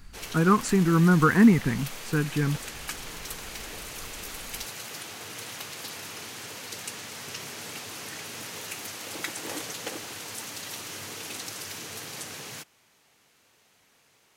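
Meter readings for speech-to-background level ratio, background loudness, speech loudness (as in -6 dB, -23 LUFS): 14.0 dB, -36.5 LUFS, -22.5 LUFS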